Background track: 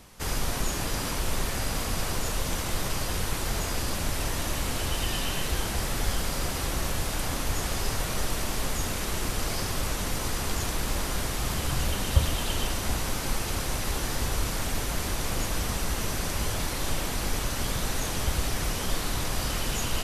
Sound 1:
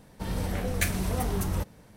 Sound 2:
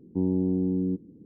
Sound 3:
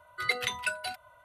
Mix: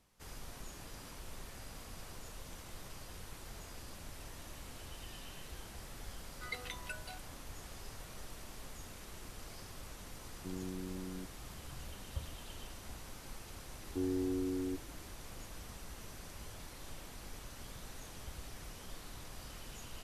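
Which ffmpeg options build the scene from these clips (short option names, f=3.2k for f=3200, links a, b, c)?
-filter_complex "[2:a]asplit=2[a][b];[0:a]volume=-20dB[c];[a]equalizer=f=230:w=4.5:g=-8[d];[b]aecho=1:1:2.7:0.84[e];[3:a]atrim=end=1.24,asetpts=PTS-STARTPTS,volume=-14dB,afade=t=in:d=0.004:c=hsin,afade=t=out:st=1.236:d=0.004:c=hsin,adelay=6230[f];[d]atrim=end=1.25,asetpts=PTS-STARTPTS,volume=-16.5dB,afade=t=in:d=0.004:c=hsin,afade=t=out:st=1.246:d=0.004:c=hsin,adelay=10290[g];[e]atrim=end=1.25,asetpts=PTS-STARTPTS,volume=-11dB,afade=t=in:d=0.004:c=hsin,afade=t=out:st=1.246:d=0.004:c=hsin,adelay=608580S[h];[c][f][g][h]amix=inputs=4:normalize=0"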